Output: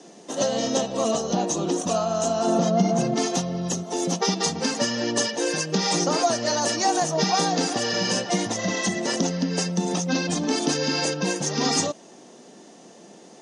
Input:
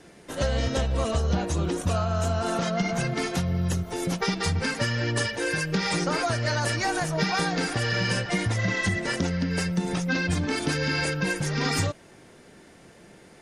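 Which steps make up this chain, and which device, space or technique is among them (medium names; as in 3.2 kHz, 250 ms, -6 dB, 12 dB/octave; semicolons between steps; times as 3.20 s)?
2.46–3.16 s: tilt shelf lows +5.5 dB, about 730 Hz; television speaker (cabinet simulation 190–8700 Hz, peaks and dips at 230 Hz +3 dB, 730 Hz +4 dB, 1.5 kHz -10 dB, 2.2 kHz -10 dB, 6.2 kHz +9 dB); trim +4 dB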